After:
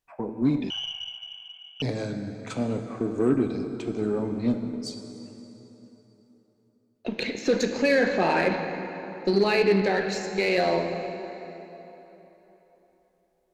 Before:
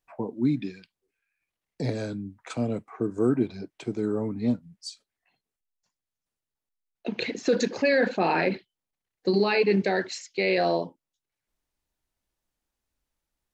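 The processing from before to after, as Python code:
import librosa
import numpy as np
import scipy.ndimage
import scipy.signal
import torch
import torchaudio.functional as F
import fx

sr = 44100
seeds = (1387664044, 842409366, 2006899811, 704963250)

y = fx.rev_plate(x, sr, seeds[0], rt60_s=3.7, hf_ratio=0.7, predelay_ms=0, drr_db=5.0)
y = fx.freq_invert(y, sr, carrier_hz=3200, at=(0.7, 1.82))
y = fx.cheby_harmonics(y, sr, harmonics=(8,), levels_db=(-30,), full_scale_db=-10.5)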